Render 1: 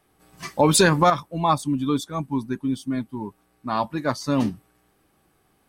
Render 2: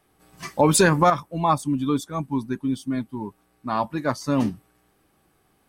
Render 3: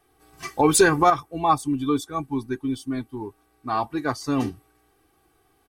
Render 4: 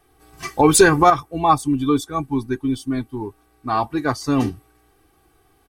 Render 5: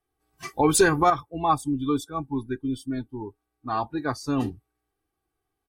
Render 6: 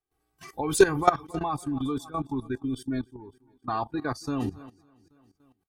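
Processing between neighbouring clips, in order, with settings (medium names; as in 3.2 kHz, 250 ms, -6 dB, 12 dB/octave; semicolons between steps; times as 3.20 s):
dynamic bell 3.9 kHz, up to -6 dB, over -43 dBFS, Q 1.9
comb 2.6 ms, depth 67%; trim -1.5 dB
bass shelf 99 Hz +6 dB; trim +4 dB
spectral noise reduction 16 dB; trim -6.5 dB
feedback delay 277 ms, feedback 53%, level -23 dB; level held to a coarse grid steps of 16 dB; trim +4 dB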